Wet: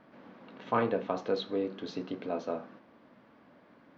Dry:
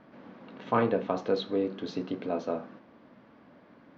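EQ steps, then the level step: bass shelf 400 Hz -3.5 dB; -1.5 dB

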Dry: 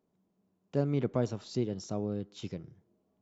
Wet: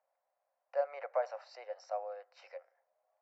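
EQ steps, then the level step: boxcar filter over 13 samples; rippled Chebyshev high-pass 520 Hz, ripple 6 dB; +8.0 dB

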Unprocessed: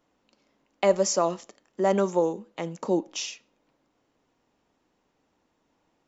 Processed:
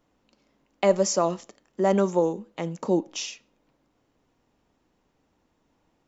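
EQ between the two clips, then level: bass shelf 160 Hz +9 dB; 0.0 dB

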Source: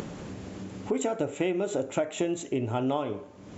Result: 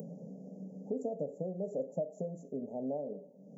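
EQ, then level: elliptic high-pass 160 Hz, stop band 40 dB; inverse Chebyshev band-stop 1.3–3.8 kHz, stop band 60 dB; static phaser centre 1.7 kHz, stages 8; +1.0 dB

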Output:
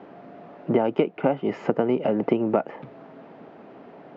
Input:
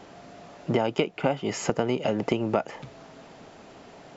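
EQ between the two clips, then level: band-pass 240–2200 Hz; distance through air 92 m; bass shelf 400 Hz +10 dB; 0.0 dB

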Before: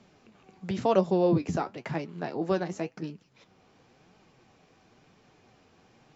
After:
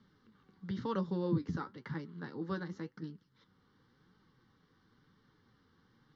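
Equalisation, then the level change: low-pass 4.3 kHz 12 dB/octave; band-stop 370 Hz, Q 12; static phaser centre 2.5 kHz, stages 6; -5.0 dB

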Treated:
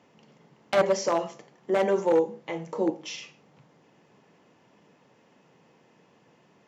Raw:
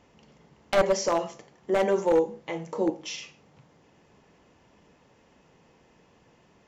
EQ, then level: high-pass 120 Hz 24 dB/octave; treble shelf 6.7 kHz -5.5 dB; 0.0 dB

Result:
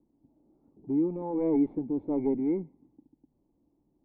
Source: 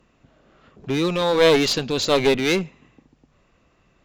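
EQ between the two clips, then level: treble shelf 3.4 kHz -7 dB; dynamic bell 2.1 kHz, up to +8 dB, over -45 dBFS, Q 6.3; cascade formant filter u; 0.0 dB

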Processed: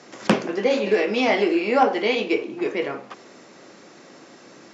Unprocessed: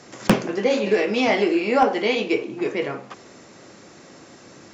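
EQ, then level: high-pass 190 Hz 12 dB/octave; low-pass 6.4 kHz 12 dB/octave; 0.0 dB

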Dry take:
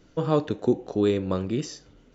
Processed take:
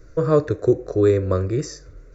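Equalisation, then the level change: bass shelf 120 Hz +11 dB; static phaser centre 840 Hz, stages 6; +7.0 dB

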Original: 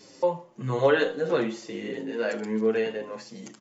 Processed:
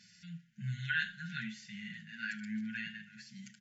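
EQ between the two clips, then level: brick-wall FIR band-stop 220–1400 Hz; bass shelf 93 Hz -10.5 dB; treble shelf 4.4 kHz -10 dB; -2.5 dB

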